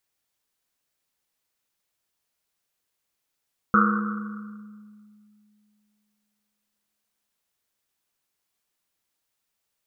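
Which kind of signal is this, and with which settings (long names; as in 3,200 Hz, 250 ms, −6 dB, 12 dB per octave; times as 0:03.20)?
drum after Risset length 3.65 s, pitch 210 Hz, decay 2.69 s, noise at 1,300 Hz, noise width 340 Hz, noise 45%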